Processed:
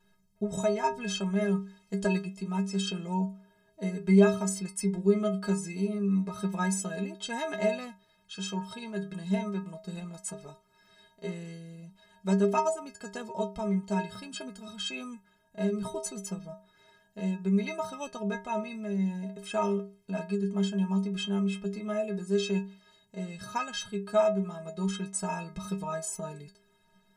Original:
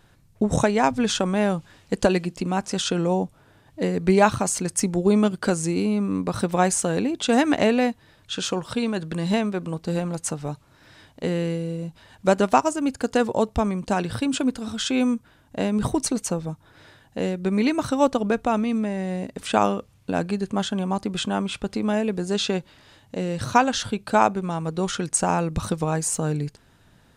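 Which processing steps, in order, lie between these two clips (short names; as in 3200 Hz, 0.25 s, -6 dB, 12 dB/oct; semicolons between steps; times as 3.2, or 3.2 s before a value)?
metallic resonator 190 Hz, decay 0.41 s, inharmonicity 0.03; gain +4 dB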